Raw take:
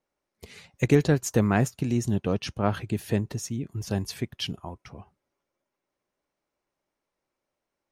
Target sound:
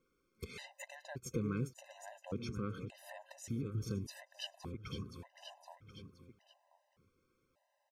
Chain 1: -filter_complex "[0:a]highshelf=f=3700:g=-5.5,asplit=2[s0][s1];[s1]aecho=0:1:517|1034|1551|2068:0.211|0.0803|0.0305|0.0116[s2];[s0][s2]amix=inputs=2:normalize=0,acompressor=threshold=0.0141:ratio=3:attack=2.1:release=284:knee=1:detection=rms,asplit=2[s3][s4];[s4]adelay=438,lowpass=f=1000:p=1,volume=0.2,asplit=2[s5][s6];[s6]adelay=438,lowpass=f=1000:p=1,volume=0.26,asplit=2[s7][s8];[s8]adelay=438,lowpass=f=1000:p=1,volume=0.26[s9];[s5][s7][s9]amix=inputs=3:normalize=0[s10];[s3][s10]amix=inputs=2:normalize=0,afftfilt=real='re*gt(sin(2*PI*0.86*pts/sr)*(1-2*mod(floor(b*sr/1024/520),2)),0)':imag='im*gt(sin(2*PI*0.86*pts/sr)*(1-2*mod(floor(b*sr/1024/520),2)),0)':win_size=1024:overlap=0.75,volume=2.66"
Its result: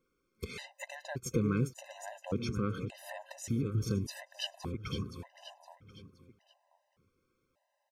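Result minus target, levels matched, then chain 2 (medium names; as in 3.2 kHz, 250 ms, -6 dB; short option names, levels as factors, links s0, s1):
compression: peak gain reduction -6.5 dB
-filter_complex "[0:a]highshelf=f=3700:g=-5.5,asplit=2[s0][s1];[s1]aecho=0:1:517|1034|1551|2068:0.211|0.0803|0.0305|0.0116[s2];[s0][s2]amix=inputs=2:normalize=0,acompressor=threshold=0.00447:ratio=3:attack=2.1:release=284:knee=1:detection=rms,asplit=2[s3][s4];[s4]adelay=438,lowpass=f=1000:p=1,volume=0.2,asplit=2[s5][s6];[s6]adelay=438,lowpass=f=1000:p=1,volume=0.26,asplit=2[s7][s8];[s8]adelay=438,lowpass=f=1000:p=1,volume=0.26[s9];[s5][s7][s9]amix=inputs=3:normalize=0[s10];[s3][s10]amix=inputs=2:normalize=0,afftfilt=real='re*gt(sin(2*PI*0.86*pts/sr)*(1-2*mod(floor(b*sr/1024/520),2)),0)':imag='im*gt(sin(2*PI*0.86*pts/sr)*(1-2*mod(floor(b*sr/1024/520),2)),0)':win_size=1024:overlap=0.75,volume=2.66"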